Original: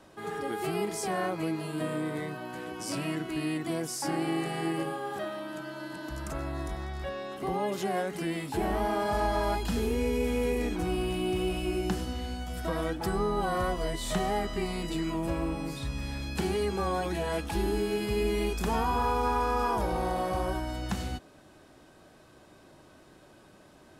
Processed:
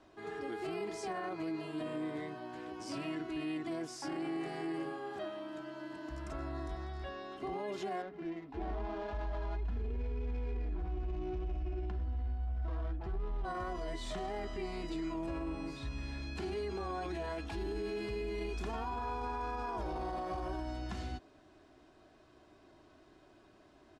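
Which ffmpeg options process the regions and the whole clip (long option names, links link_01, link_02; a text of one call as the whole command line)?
ffmpeg -i in.wav -filter_complex "[0:a]asettb=1/sr,asplit=3[link_01][link_02][link_03];[link_01]atrim=end=8.024[link_04];[link_02]atrim=start=8.02:end=13.45,asetpts=PTS-STARTPTS,afade=type=in:duration=0.004:curve=qsin,afade=type=out:start_time=5.426:duration=0.004:curve=qsin,asubboost=boost=7:cutoff=91,flanger=delay=3.7:depth=2.1:regen=-49:speed=1.7:shape=sinusoidal,adynamicsmooth=sensitivity=6.5:basefreq=870[link_05];[link_03]atrim=start=13.446[link_06];[link_04][link_05]acrossfade=duration=0.004:curve1=hsin:curve2=qsin[link_07];[link_07][link_06]acrossfade=duration=0.004:curve1=qsin:curve2=hsin,lowpass=5300,aecho=1:1:2.9:0.47,alimiter=limit=-24dB:level=0:latency=1:release=16,volume=-7dB" out.wav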